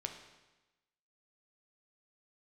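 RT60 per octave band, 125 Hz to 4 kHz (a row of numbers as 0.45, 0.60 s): 1.1, 1.1, 1.1, 1.1, 1.1, 1.0 s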